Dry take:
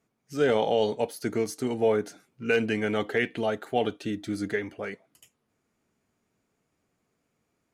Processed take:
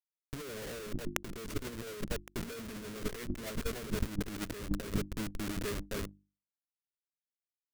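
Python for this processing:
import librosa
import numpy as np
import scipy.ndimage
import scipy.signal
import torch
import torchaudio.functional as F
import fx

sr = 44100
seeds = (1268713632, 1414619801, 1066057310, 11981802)

p1 = fx.schmitt(x, sr, flips_db=-32.0)
p2 = fx.peak_eq(p1, sr, hz=800.0, db=-10.5, octaves=0.52)
p3 = fx.hum_notches(p2, sr, base_hz=50, count=7)
p4 = np.sign(p3) * np.maximum(np.abs(p3) - 10.0 ** (-41.5 / 20.0), 0.0)
p5 = p3 + F.gain(torch.from_numpy(p4), -6.5).numpy()
p6 = p5 + 10.0 ** (-18.5 / 20.0) * np.pad(p5, (int(1114 * sr / 1000.0), 0))[:len(p5)]
p7 = fx.over_compress(p6, sr, threshold_db=-37.0, ratio=-0.5)
p8 = fx.high_shelf(p7, sr, hz=5700.0, db=4.5)
y = F.gain(torch.from_numpy(p8), 2.0).numpy()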